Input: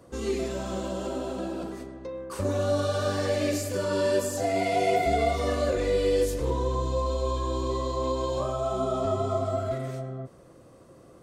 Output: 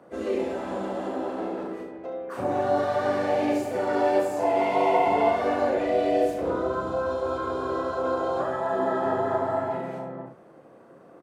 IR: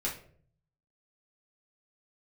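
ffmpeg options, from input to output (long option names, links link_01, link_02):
-filter_complex "[0:a]asplit=4[link_01][link_02][link_03][link_04];[link_02]asetrate=55563,aresample=44100,atempo=0.793701,volume=-8dB[link_05];[link_03]asetrate=58866,aresample=44100,atempo=0.749154,volume=-11dB[link_06];[link_04]asetrate=66075,aresample=44100,atempo=0.66742,volume=-12dB[link_07];[link_01][link_05][link_06][link_07]amix=inputs=4:normalize=0,acrossover=split=160 2700:gain=0.0891 1 0.178[link_08][link_09][link_10];[link_08][link_09][link_10]amix=inputs=3:normalize=0,aecho=1:1:34|71:0.531|0.447"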